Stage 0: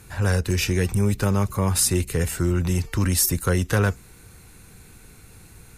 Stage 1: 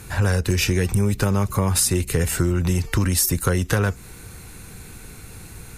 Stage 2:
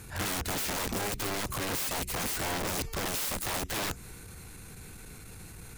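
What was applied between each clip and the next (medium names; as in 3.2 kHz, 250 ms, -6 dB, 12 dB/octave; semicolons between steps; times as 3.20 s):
compression, threshold -24 dBFS, peak gain reduction 8.5 dB; trim +7.5 dB
transient shaper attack -11 dB, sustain +1 dB; integer overflow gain 21.5 dB; trim -6 dB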